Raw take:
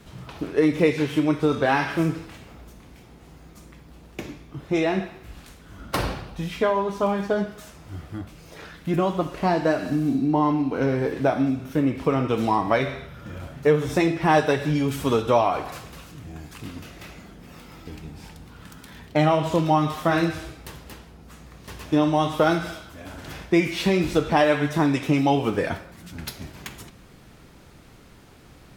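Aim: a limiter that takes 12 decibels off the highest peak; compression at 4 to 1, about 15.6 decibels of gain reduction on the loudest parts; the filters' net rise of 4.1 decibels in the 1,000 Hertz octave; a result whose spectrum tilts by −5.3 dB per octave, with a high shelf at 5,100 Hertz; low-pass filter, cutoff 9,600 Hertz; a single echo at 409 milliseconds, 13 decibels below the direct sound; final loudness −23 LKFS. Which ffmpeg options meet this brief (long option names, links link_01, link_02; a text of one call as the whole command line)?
ffmpeg -i in.wav -af "lowpass=9600,equalizer=frequency=1000:width_type=o:gain=5.5,highshelf=frequency=5100:gain=-7,acompressor=threshold=-32dB:ratio=4,alimiter=level_in=4.5dB:limit=-24dB:level=0:latency=1,volume=-4.5dB,aecho=1:1:409:0.224,volume=16dB" out.wav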